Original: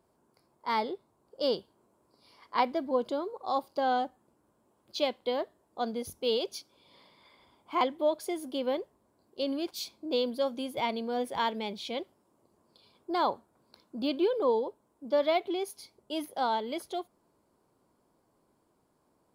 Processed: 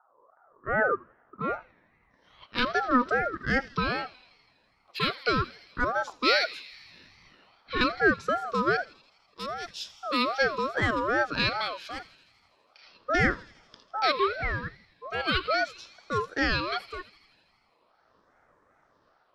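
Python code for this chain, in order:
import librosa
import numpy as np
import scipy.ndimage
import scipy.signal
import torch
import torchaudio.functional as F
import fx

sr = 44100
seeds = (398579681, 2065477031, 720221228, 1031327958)

p1 = fx.filter_sweep_lowpass(x, sr, from_hz=270.0, to_hz=3600.0, start_s=0.28, end_s=2.49, q=2.2)
p2 = 10.0 ** (-25.0 / 20.0) * np.tanh(p1 / 10.0 ** (-25.0 / 20.0))
p3 = p1 + F.gain(torch.from_numpy(p2), -4.5).numpy()
p4 = fx.phaser_stages(p3, sr, stages=4, low_hz=420.0, high_hz=3400.0, hz=0.39, feedback_pct=25)
p5 = p4 + fx.echo_thinned(p4, sr, ms=82, feedback_pct=78, hz=1100.0, wet_db=-16, dry=0)
p6 = fx.ring_lfo(p5, sr, carrier_hz=910.0, swing_pct=20, hz=2.5)
y = F.gain(torch.from_numpy(p6), 5.0).numpy()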